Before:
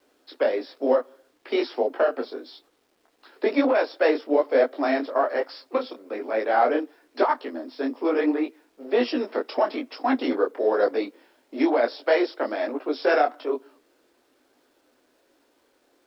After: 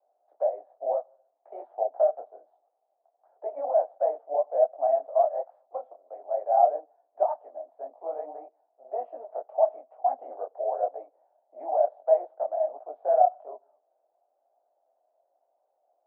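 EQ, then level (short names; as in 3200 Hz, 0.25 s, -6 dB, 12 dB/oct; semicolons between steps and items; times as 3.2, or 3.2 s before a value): Butterworth band-pass 690 Hz, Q 3.9; air absorption 490 m; tilt +2 dB/oct; +5.5 dB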